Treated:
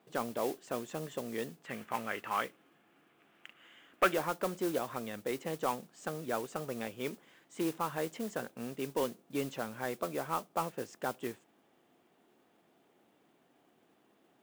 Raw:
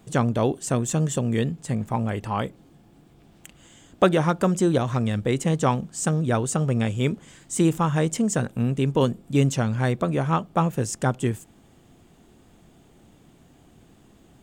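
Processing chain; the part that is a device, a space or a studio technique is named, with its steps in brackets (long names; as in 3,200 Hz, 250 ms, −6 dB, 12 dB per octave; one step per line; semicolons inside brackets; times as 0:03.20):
carbon microphone (band-pass filter 360–3,000 Hz; soft clipping −11.5 dBFS, distortion −18 dB; noise that follows the level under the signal 14 dB)
0:01.64–0:04.14: flat-topped bell 1,900 Hz +9 dB
level −8.5 dB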